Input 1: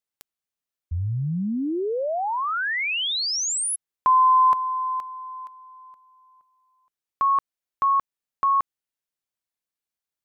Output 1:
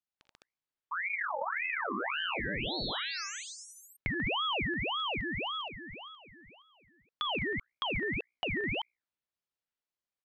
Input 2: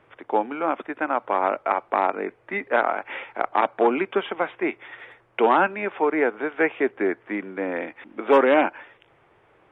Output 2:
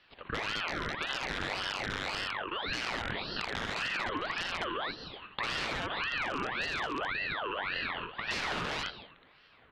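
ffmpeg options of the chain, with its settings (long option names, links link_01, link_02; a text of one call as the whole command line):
ffmpeg -i in.wav -af "lowshelf=frequency=310:gain=-3,aeval=exprs='(mod(3.76*val(0)+1,2)-1)/3.76':channel_layout=same,equalizer=frequency=1400:width_type=o:width=0.35:gain=-4.5,bandreject=frequency=60:width_type=h:width=6,bandreject=frequency=120:width_type=h:width=6,bandreject=frequency=180:width_type=h:width=6,aecho=1:1:43|59|82|140|208|209:0.299|0.188|0.422|0.708|0.355|0.668,acompressor=threshold=-29dB:ratio=6:attack=9.1:release=59:knee=1:detection=peak,lowpass=3300,aeval=exprs='val(0)*sin(2*PI*1500*n/s+1500*0.55/1.8*sin(2*PI*1.8*n/s))':channel_layout=same,volume=-1.5dB" out.wav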